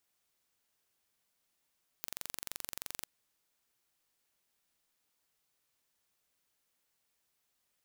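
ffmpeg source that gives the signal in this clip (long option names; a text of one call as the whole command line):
ffmpeg -f lavfi -i "aevalsrc='0.251*eq(mod(n,1909),0)':duration=1.03:sample_rate=44100" out.wav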